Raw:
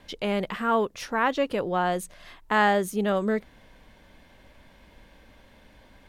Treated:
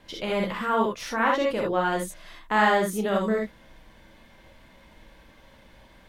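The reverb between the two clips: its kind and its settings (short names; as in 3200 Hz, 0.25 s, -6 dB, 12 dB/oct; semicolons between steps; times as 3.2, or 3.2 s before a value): non-linear reverb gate 90 ms rising, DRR -1 dB; gain -2 dB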